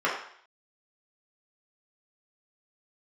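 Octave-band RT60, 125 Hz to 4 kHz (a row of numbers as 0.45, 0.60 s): 0.45, 0.55, 0.55, 0.60, 0.65, 0.60 s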